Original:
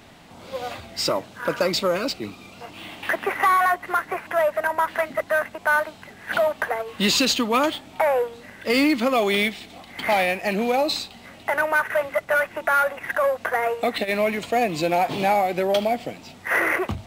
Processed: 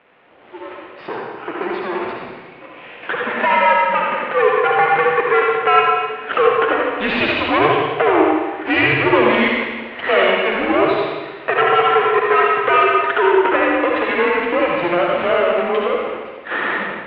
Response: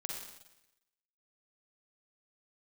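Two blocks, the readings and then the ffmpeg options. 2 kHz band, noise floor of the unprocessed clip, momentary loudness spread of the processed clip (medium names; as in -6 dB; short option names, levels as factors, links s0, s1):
+5.5 dB, -46 dBFS, 13 LU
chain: -filter_complex "[0:a]dynaudnorm=f=940:g=7:m=3.76,aeval=exprs='max(val(0),0)':c=same[s0];[1:a]atrim=start_sample=2205,asetrate=30429,aresample=44100[s1];[s0][s1]afir=irnorm=-1:irlink=0,highpass=f=430:t=q:w=0.5412,highpass=f=430:t=q:w=1.307,lowpass=f=3000:t=q:w=0.5176,lowpass=f=3000:t=q:w=0.7071,lowpass=f=3000:t=q:w=1.932,afreqshift=-170,volume=1.26"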